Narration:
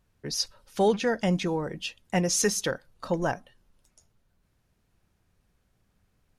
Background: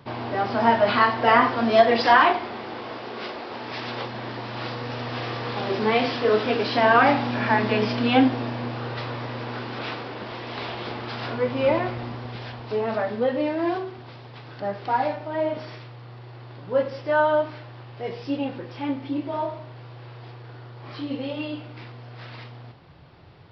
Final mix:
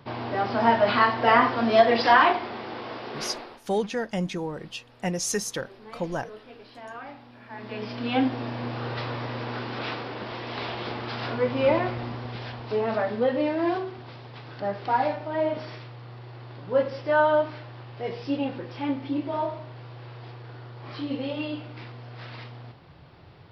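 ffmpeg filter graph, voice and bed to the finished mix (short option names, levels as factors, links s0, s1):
-filter_complex "[0:a]adelay=2900,volume=0.708[s0];[1:a]volume=11.9,afade=t=out:st=3.32:d=0.29:silence=0.0794328,afade=t=in:st=7.49:d=1.4:silence=0.0707946[s1];[s0][s1]amix=inputs=2:normalize=0"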